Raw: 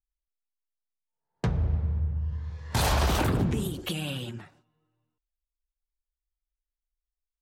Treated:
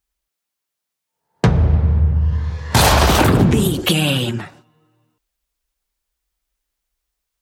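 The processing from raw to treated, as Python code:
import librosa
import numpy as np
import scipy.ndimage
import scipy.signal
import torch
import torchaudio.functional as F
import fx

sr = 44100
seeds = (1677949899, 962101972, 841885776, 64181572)

p1 = fx.highpass(x, sr, hz=84.0, slope=6)
p2 = fx.rider(p1, sr, range_db=4, speed_s=0.5)
p3 = p1 + (p2 * librosa.db_to_amplitude(1.0))
y = p3 * librosa.db_to_amplitude(8.5)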